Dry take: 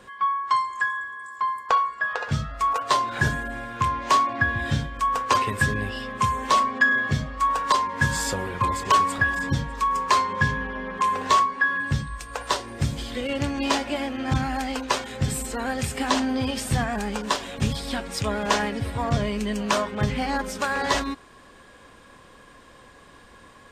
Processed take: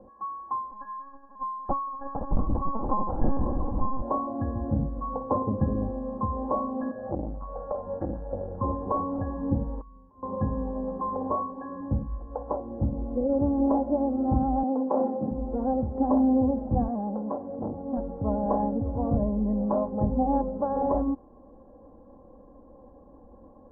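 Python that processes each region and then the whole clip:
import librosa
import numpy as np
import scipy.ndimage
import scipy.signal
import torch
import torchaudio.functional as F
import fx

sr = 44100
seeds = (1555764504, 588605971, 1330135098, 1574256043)

y = fx.chain(x, sr, fx.echo_opening(ms=170, hz=200, octaves=1, feedback_pct=70, wet_db=-3),
    fx.lpc_vocoder(seeds[0], excitation='pitch_kept', order=10),
    fx.sustainer(db_per_s=48.0), at=(0.71, 4.02))
y = fx.chain(y, sr, fx.savgol(points=41),
    fx.peak_eq(hz=150.0, db=8.5, octaves=0.96), at=(4.79, 5.64))
y = fx.chain(y, sr, fx.transient(attack_db=4, sustain_db=9),
    fx.fixed_phaser(hz=1500.0, stages=8),
    fx.transformer_sat(knee_hz=1500.0), at=(6.91, 8.58))
y = fx.chain(y, sr, fx.tone_stack(knobs='6-0-2'),
    fx.over_compress(threshold_db=-45.0, ratio=-1.0), at=(9.81, 10.23))
y = fx.chain(y, sr, fx.highpass(hz=170.0, slope=24),
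    fx.notch(hz=1500.0, q=13.0),
    fx.sustainer(db_per_s=54.0), at=(14.63, 15.31))
y = fx.chain(y, sr, fx.highpass(hz=88.0, slope=24),
    fx.notch(hz=870.0, q=20.0),
    fx.transformer_sat(knee_hz=1700.0), at=(16.88, 17.97))
y = scipy.signal.sosfilt(scipy.signal.butter(6, 830.0, 'lowpass', fs=sr, output='sos'), y)
y = y + 0.61 * np.pad(y, (int(3.7 * sr / 1000.0), 0))[:len(y)]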